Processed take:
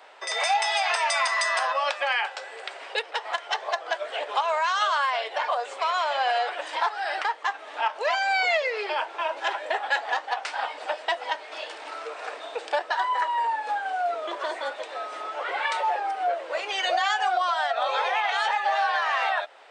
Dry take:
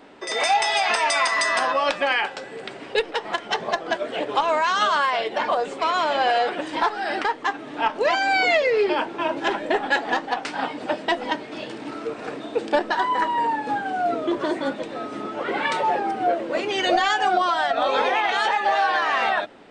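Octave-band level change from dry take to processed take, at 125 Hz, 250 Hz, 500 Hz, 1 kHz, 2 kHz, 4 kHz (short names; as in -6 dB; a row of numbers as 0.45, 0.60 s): under -40 dB, -22.0 dB, -6.5 dB, -3.0 dB, -3.0 dB, -2.5 dB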